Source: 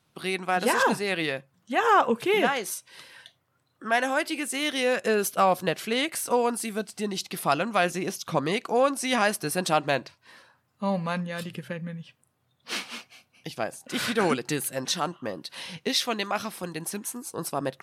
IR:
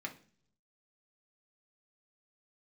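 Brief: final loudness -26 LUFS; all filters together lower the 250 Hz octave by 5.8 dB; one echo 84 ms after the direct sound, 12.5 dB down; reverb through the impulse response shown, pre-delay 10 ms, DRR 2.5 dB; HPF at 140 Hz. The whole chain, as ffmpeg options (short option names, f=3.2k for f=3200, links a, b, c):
-filter_complex "[0:a]highpass=140,equalizer=f=250:t=o:g=-7,aecho=1:1:84:0.237,asplit=2[a][b];[1:a]atrim=start_sample=2205,adelay=10[c];[b][c]afir=irnorm=-1:irlink=0,volume=-2.5dB[d];[a][d]amix=inputs=2:normalize=0"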